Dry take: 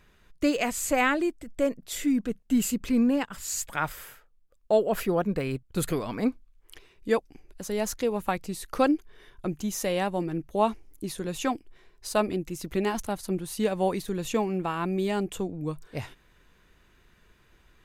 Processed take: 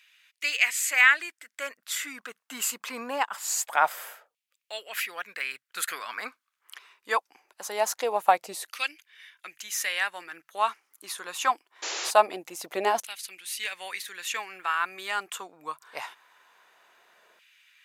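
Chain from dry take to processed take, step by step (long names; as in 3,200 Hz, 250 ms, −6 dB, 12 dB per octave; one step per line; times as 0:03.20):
auto-filter high-pass saw down 0.23 Hz 610–2,600 Hz
sound drawn into the spectrogram noise, 0:11.82–0:12.11, 280–7,400 Hz −36 dBFS
level +3 dB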